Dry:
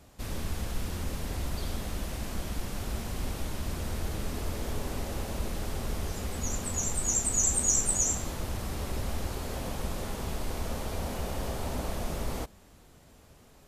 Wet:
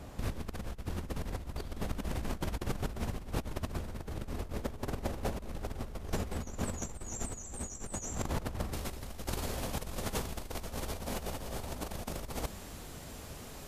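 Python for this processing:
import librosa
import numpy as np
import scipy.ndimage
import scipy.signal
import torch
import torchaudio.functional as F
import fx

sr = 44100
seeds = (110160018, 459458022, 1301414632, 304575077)

y = fx.high_shelf(x, sr, hz=2600.0, db=fx.steps((0.0, -8.5), (8.72, 3.0)))
y = fx.over_compress(y, sr, threshold_db=-38.0, ratio=-0.5)
y = F.gain(torch.from_numpy(y), 2.5).numpy()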